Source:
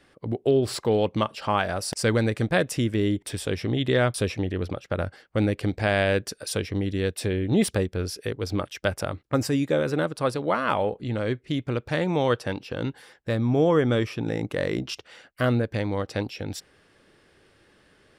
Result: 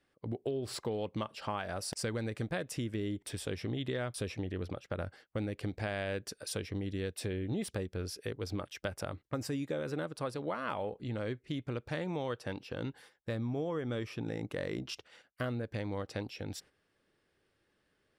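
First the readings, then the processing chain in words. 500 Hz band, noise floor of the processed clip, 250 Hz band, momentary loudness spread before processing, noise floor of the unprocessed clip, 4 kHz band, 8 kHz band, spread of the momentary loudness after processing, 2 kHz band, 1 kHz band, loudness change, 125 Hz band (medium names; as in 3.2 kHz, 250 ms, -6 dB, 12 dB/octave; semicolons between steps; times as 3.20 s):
-13.0 dB, -77 dBFS, -12.0 dB, 8 LU, -62 dBFS, -10.5 dB, -9.0 dB, 5 LU, -12.5 dB, -13.0 dB, -12.0 dB, -11.5 dB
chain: gate -47 dBFS, range -9 dB; compression, threshold -24 dBFS, peak gain reduction 8.5 dB; trim -8 dB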